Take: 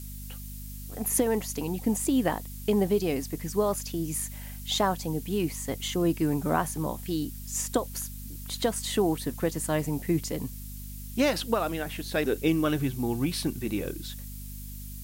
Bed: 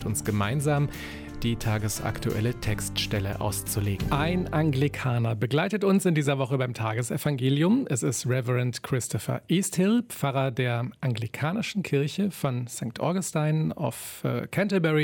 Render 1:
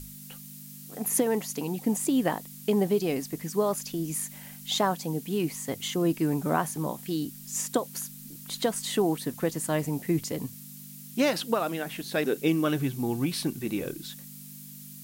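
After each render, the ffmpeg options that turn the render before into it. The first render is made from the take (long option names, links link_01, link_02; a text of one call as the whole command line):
ffmpeg -i in.wav -af "bandreject=frequency=50:width_type=h:width=6,bandreject=frequency=100:width_type=h:width=6" out.wav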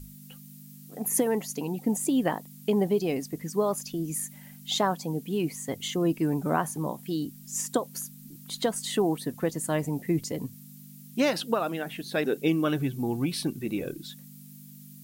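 ffmpeg -i in.wav -af "afftdn=noise_reduction=8:noise_floor=-45" out.wav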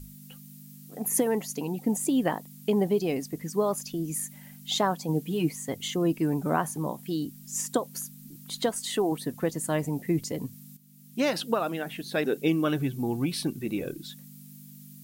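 ffmpeg -i in.wav -filter_complex "[0:a]asettb=1/sr,asplit=3[link_01][link_02][link_03];[link_01]atrim=end=5.084[link_04];[link_02]atrim=start=5.08:end=5.51,asetpts=PTS-STARTPTS,afade=type=in:duration=0.004:curve=qsin,afade=type=out:start_time=0.426:duration=0.004:curve=qsin,aecho=1:1:6.5:0.65,atrim=end_sample=18963[link_05];[link_03]atrim=start=5.506[link_06];[link_04][link_05]acrossfade=duration=0.004:curve1=hsin:curve2=qsin[link_07];[link_07][link_06]acrossfade=duration=0.004:curve1=qsin:curve2=hsin,asettb=1/sr,asplit=3[link_08][link_09][link_10];[link_08]atrim=end=8.694[link_11];[link_09]atrim=start=8.69:end=9.12,asetpts=PTS-STARTPTS,afade=type=in:duration=0.004:curve=qsin,afade=type=out:start_time=0.426:duration=0.004:curve=qsin,equalizer=frequency=160:width_type=o:width=0.98:gain=-7.5[link_12];[link_10]atrim=start=9.116[link_13];[link_11][link_12]acrossfade=duration=0.004:curve1=hsin:curve2=qsin[link_14];[link_14][link_13]acrossfade=duration=0.004:curve1=qsin:curve2=hsin,asplit=2[link_15][link_16];[link_15]atrim=end=10.77,asetpts=PTS-STARTPTS,afade=type=out:start_time=10.766:duration=0.004:curve=hsin:silence=0.211349[link_17];[link_16]atrim=start=10.77,asetpts=PTS-STARTPTS,afade=type=in:duration=0.6:silence=0.211349[link_18];[link_17][link_18]concat=n=2:v=0:a=1" out.wav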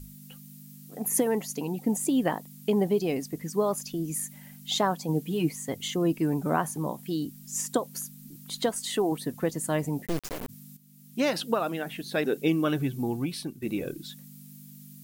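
ffmpeg -i in.wav -filter_complex "[0:a]asplit=3[link_01][link_02][link_03];[link_01]afade=type=out:start_time=10.05:duration=0.02[link_04];[link_02]acrusher=bits=3:dc=4:mix=0:aa=0.000001,afade=type=in:start_time=10.05:duration=0.02,afade=type=out:start_time=10.48:duration=0.02[link_05];[link_03]afade=type=in:start_time=10.48:duration=0.02[link_06];[link_04][link_05][link_06]amix=inputs=3:normalize=0,asplit=2[link_07][link_08];[link_07]atrim=end=13.62,asetpts=PTS-STARTPTS,afade=type=out:start_time=13.04:duration=0.58:silence=0.316228[link_09];[link_08]atrim=start=13.62,asetpts=PTS-STARTPTS,afade=type=in:duration=0.004:curve=hsin:silence=0.316228[link_10];[link_09][link_10]concat=n=2:v=0:a=1" out.wav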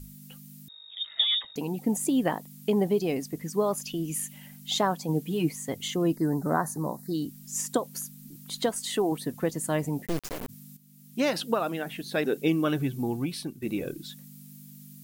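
ffmpeg -i in.wav -filter_complex "[0:a]asettb=1/sr,asplit=3[link_01][link_02][link_03];[link_01]atrim=end=0.684[link_04];[link_02]atrim=start=0.68:end=1.56,asetpts=PTS-STARTPTS,afade=type=in:duration=0.004:curve=qsin,afade=type=out:start_time=0.876:duration=0.004:curve=qsin,lowpass=frequency=3300:width_type=q:width=0.5098,lowpass=frequency=3300:width_type=q:width=0.6013,lowpass=frequency=3300:width_type=q:width=0.9,lowpass=frequency=3300:width_type=q:width=2.563,afreqshift=-3900[link_05];[link_03]atrim=start=1.556[link_06];[link_04][link_05]acrossfade=duration=0.004:curve1=hsin:curve2=qsin[link_07];[link_07][link_06]acrossfade=duration=0.004:curve1=qsin:curve2=hsin,asettb=1/sr,asplit=3[link_08][link_09][link_10];[link_08]atrim=end=3.834[link_11];[link_09]atrim=start=3.83:end=4.47,asetpts=PTS-STARTPTS,afade=type=in:duration=0.004:curve=qsin,afade=type=out:start_time=0.636:duration=0.004:curve=qsin,equalizer=frequency=2900:width_type=o:width=0.41:gain=11.5[link_12];[link_10]atrim=start=4.466[link_13];[link_11][link_12]acrossfade=duration=0.004:curve1=hsin:curve2=qsin[link_14];[link_14][link_13]acrossfade=duration=0.004:curve1=qsin:curve2=hsin,asplit=3[link_15][link_16][link_17];[link_15]afade=type=out:start_time=6.15:duration=0.02[link_18];[link_16]asuperstop=centerf=2800:order=12:qfactor=1.5,afade=type=in:start_time=6.15:duration=0.02,afade=type=out:start_time=7.13:duration=0.02[link_19];[link_17]afade=type=in:start_time=7.13:duration=0.02[link_20];[link_18][link_19][link_20]amix=inputs=3:normalize=0" out.wav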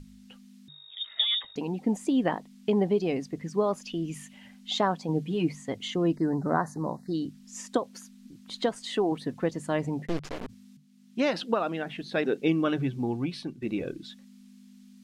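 ffmpeg -i in.wav -af "lowpass=4400,bandreject=frequency=50:width_type=h:width=6,bandreject=frequency=100:width_type=h:width=6,bandreject=frequency=150:width_type=h:width=6" out.wav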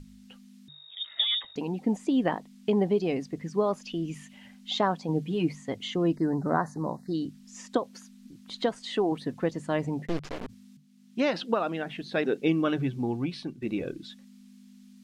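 ffmpeg -i in.wav -filter_complex "[0:a]acrossover=split=6300[link_01][link_02];[link_02]acompressor=threshold=-57dB:ratio=4:attack=1:release=60[link_03];[link_01][link_03]amix=inputs=2:normalize=0" out.wav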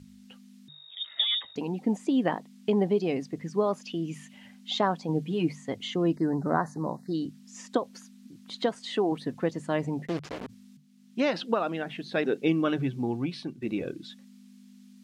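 ffmpeg -i in.wav -af "highpass=81" out.wav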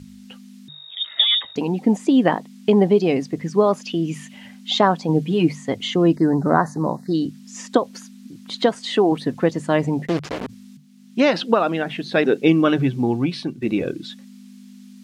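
ffmpeg -i in.wav -af "volume=9.5dB,alimiter=limit=-2dB:level=0:latency=1" out.wav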